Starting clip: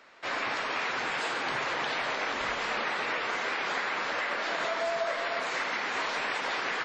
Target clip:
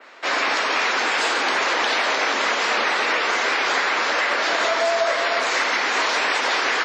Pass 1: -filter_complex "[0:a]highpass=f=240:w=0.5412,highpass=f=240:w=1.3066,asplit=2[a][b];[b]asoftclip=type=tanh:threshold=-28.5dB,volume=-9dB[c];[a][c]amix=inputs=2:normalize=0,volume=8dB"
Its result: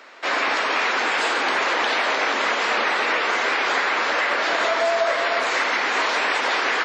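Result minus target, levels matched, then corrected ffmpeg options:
8000 Hz band -4.0 dB
-filter_complex "[0:a]highpass=f=240:w=0.5412,highpass=f=240:w=1.3066,adynamicequalizer=threshold=0.00178:dfrequency=5800:dqfactor=1.1:tfrequency=5800:tqfactor=1.1:attack=5:release=100:ratio=0.417:range=2.5:mode=boostabove:tftype=bell,asplit=2[a][b];[b]asoftclip=type=tanh:threshold=-28.5dB,volume=-9dB[c];[a][c]amix=inputs=2:normalize=0,volume=8dB"

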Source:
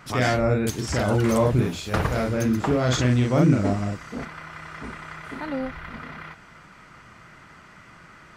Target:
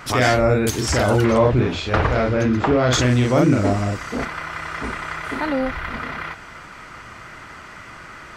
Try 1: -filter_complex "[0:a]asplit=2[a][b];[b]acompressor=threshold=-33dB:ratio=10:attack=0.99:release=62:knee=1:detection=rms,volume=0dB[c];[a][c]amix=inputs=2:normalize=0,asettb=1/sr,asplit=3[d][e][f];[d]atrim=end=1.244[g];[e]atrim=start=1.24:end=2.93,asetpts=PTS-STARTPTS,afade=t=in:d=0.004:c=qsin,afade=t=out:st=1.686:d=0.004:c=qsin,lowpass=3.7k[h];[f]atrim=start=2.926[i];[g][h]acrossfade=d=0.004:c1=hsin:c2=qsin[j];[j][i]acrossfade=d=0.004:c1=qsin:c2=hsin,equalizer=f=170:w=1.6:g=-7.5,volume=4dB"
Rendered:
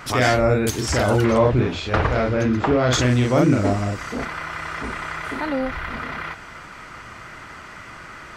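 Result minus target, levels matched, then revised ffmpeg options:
compressor: peak gain reduction +6.5 dB
-filter_complex "[0:a]asplit=2[a][b];[b]acompressor=threshold=-26dB:ratio=10:attack=0.99:release=62:knee=1:detection=rms,volume=0dB[c];[a][c]amix=inputs=2:normalize=0,asettb=1/sr,asplit=3[d][e][f];[d]atrim=end=1.244[g];[e]atrim=start=1.24:end=2.93,asetpts=PTS-STARTPTS,afade=t=in:d=0.004:c=qsin,afade=t=out:st=1.686:d=0.004:c=qsin,lowpass=3.7k[h];[f]atrim=start=2.926[i];[g][h]acrossfade=d=0.004:c1=hsin:c2=qsin[j];[j][i]acrossfade=d=0.004:c1=qsin:c2=hsin,equalizer=f=170:w=1.6:g=-7.5,volume=4dB"

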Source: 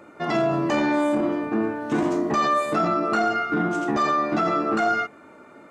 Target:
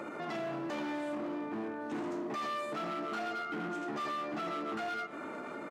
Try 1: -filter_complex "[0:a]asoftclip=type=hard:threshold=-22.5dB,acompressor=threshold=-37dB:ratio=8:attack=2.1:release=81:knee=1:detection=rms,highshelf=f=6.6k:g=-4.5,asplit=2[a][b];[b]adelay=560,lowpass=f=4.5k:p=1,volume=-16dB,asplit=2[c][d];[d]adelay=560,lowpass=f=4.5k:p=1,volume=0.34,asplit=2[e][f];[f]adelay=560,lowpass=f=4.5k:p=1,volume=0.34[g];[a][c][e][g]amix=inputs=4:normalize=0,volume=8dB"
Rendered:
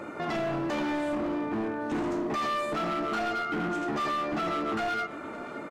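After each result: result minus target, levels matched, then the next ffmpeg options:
compressor: peak gain reduction -7 dB; 125 Hz band +3.0 dB
-filter_complex "[0:a]asoftclip=type=hard:threshold=-22.5dB,acompressor=threshold=-45dB:ratio=8:attack=2.1:release=81:knee=1:detection=rms,highshelf=f=6.6k:g=-4.5,asplit=2[a][b];[b]adelay=560,lowpass=f=4.5k:p=1,volume=-16dB,asplit=2[c][d];[d]adelay=560,lowpass=f=4.5k:p=1,volume=0.34,asplit=2[e][f];[f]adelay=560,lowpass=f=4.5k:p=1,volume=0.34[g];[a][c][e][g]amix=inputs=4:normalize=0,volume=8dB"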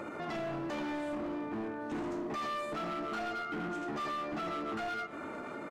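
125 Hz band +3.0 dB
-filter_complex "[0:a]asoftclip=type=hard:threshold=-22.5dB,acompressor=threshold=-45dB:ratio=8:attack=2.1:release=81:knee=1:detection=rms,highpass=150,highshelf=f=6.6k:g=-4.5,asplit=2[a][b];[b]adelay=560,lowpass=f=4.5k:p=1,volume=-16dB,asplit=2[c][d];[d]adelay=560,lowpass=f=4.5k:p=1,volume=0.34,asplit=2[e][f];[f]adelay=560,lowpass=f=4.5k:p=1,volume=0.34[g];[a][c][e][g]amix=inputs=4:normalize=0,volume=8dB"

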